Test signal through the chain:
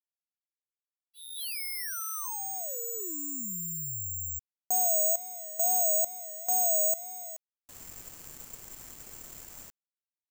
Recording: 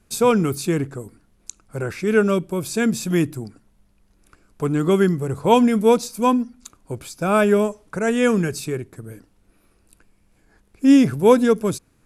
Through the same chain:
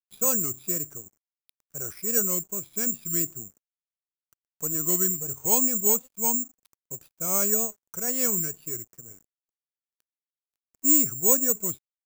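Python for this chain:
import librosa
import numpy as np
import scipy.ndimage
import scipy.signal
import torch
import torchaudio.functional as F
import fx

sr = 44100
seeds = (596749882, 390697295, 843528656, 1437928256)

y = fx.wow_flutter(x, sr, seeds[0], rate_hz=2.1, depth_cents=140.0)
y = (np.kron(scipy.signal.resample_poly(y, 1, 6), np.eye(6)[0]) * 6)[:len(y)]
y = np.sign(y) * np.maximum(np.abs(y) - 10.0 ** (-31.5 / 20.0), 0.0)
y = y * librosa.db_to_amplitude(-15.0)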